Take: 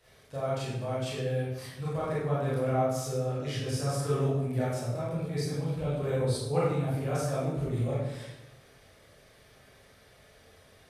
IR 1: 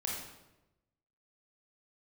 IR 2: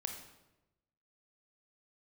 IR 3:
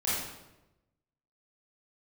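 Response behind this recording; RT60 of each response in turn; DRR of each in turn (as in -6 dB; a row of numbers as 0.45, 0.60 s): 3; 1.0, 1.0, 1.0 s; -3.0, 4.0, -9.5 dB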